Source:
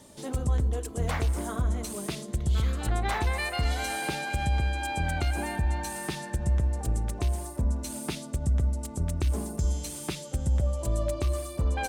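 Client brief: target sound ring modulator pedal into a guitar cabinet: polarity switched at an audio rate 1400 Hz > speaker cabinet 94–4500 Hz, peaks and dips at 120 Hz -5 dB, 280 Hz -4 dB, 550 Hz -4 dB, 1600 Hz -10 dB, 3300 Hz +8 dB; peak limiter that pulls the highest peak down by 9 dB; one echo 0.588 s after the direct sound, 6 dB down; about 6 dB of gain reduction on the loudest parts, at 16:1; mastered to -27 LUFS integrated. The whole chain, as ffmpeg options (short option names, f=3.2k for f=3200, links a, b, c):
-af "acompressor=threshold=-27dB:ratio=16,alimiter=level_in=2.5dB:limit=-24dB:level=0:latency=1,volume=-2.5dB,aecho=1:1:588:0.501,aeval=exprs='val(0)*sgn(sin(2*PI*1400*n/s))':c=same,highpass=94,equalizer=f=120:t=q:w=4:g=-5,equalizer=f=280:t=q:w=4:g=-4,equalizer=f=550:t=q:w=4:g=-4,equalizer=f=1.6k:t=q:w=4:g=-10,equalizer=f=3.3k:t=q:w=4:g=8,lowpass=f=4.5k:w=0.5412,lowpass=f=4.5k:w=1.3066,volume=8dB"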